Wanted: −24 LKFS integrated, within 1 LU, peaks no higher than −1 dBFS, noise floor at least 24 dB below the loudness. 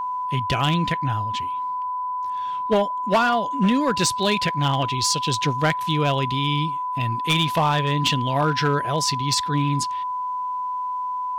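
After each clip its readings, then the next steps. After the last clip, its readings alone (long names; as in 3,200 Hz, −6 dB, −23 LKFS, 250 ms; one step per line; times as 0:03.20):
share of clipped samples 0.6%; peaks flattened at −13.0 dBFS; interfering tone 1,000 Hz; level of the tone −24 dBFS; integrated loudness −22.5 LKFS; sample peak −13.0 dBFS; target loudness −24.0 LKFS
→ clipped peaks rebuilt −13 dBFS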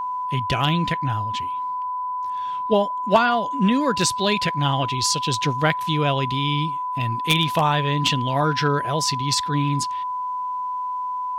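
share of clipped samples 0.0%; interfering tone 1,000 Hz; level of the tone −24 dBFS
→ notch filter 1,000 Hz, Q 30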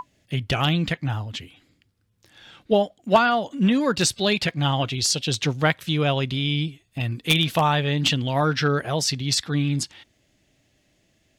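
interfering tone none found; integrated loudness −22.5 LKFS; sample peak −3.5 dBFS; target loudness −24.0 LKFS
→ level −1.5 dB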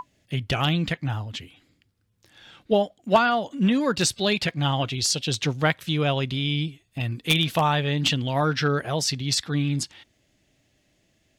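integrated loudness −24.0 LKFS; sample peak −5.0 dBFS; background noise floor −68 dBFS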